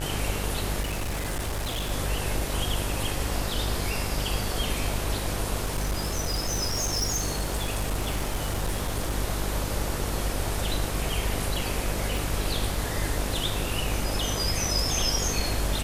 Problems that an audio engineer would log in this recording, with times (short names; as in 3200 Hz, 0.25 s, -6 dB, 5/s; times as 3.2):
buzz 50 Hz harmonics 39 -32 dBFS
0.8–1.92 clipped -26 dBFS
5.63–9.16 clipped -23 dBFS
12.17 pop